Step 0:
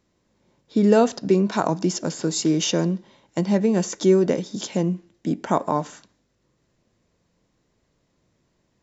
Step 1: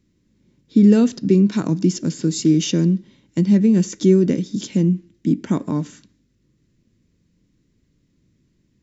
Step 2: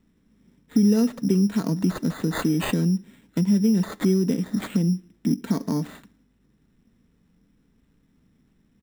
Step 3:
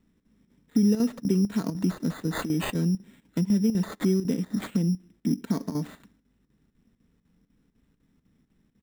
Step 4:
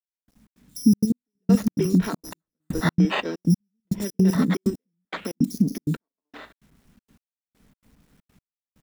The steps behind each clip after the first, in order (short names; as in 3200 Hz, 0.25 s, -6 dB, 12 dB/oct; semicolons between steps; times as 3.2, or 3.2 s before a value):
EQ curve 290 Hz 0 dB, 730 Hz -22 dB, 2100 Hz -8 dB; gain +7 dB
comb 4.4 ms, depth 45%; compressor 2:1, threshold -23 dBFS, peak gain reduction 9.5 dB; sample-and-hold 8×
chopper 4 Hz, depth 65%, duty 80%; gain -3 dB
three bands offset in time highs, lows, mids 0.1/0.5 s, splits 330/4800 Hz; requantised 12-bit, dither none; step gate "...xx.xxxx.x." 161 bpm -60 dB; gain +8 dB